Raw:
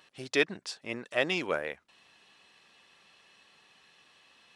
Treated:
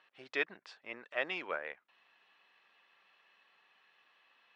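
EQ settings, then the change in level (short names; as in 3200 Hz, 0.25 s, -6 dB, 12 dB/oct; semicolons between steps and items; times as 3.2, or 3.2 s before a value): HPF 1400 Hz 6 dB/oct; LPF 2000 Hz 12 dB/oct; 0.0 dB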